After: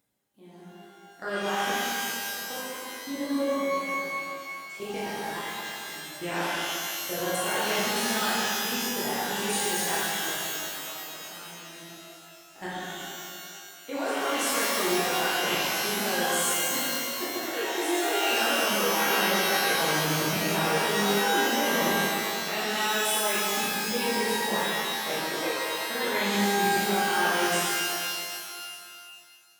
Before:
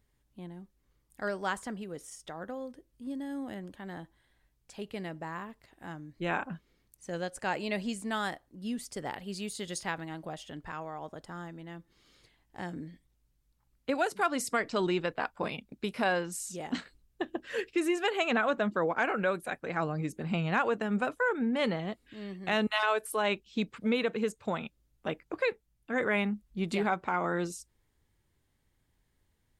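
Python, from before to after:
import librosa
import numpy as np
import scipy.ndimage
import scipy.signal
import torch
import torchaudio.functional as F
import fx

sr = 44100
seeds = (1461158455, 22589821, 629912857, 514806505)

y = scipy.signal.sosfilt(scipy.signal.butter(2, 180.0, 'highpass', fs=sr, output='sos'), x)
y = fx.high_shelf(y, sr, hz=5800.0, db=8.5)
y = fx.level_steps(y, sr, step_db=19)
y = fx.rev_shimmer(y, sr, seeds[0], rt60_s=2.2, semitones=12, shimmer_db=-2, drr_db=-10.0)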